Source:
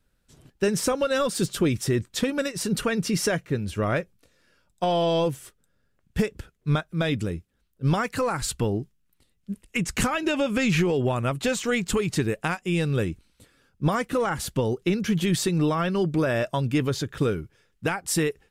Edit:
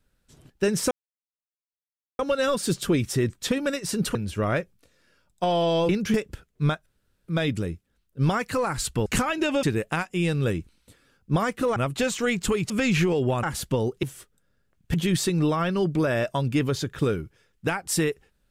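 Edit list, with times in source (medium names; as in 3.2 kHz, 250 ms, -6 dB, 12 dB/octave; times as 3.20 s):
0.91 s: insert silence 1.28 s
2.87–3.55 s: delete
5.29–6.20 s: swap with 14.88–15.13 s
6.92 s: insert room tone 0.42 s
8.70–9.91 s: delete
10.48–11.21 s: swap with 12.15–14.28 s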